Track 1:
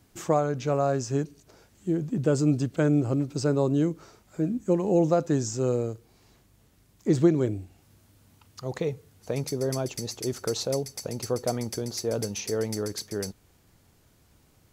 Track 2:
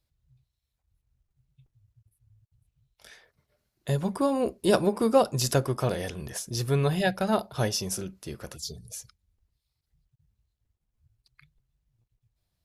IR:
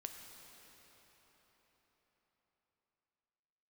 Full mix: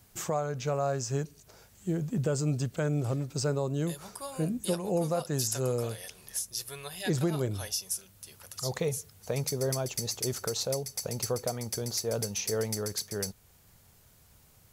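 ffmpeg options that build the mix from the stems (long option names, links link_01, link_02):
-filter_complex "[0:a]highshelf=frequency=8700:gain=9.5,volume=0.5dB[link_01];[1:a]highpass=frequency=520:poles=1,crystalizer=i=4:c=0,volume=-12dB[link_02];[link_01][link_02]amix=inputs=2:normalize=0,equalizer=frequency=300:width_type=o:width=0.65:gain=-9.5,alimiter=limit=-19dB:level=0:latency=1:release=425"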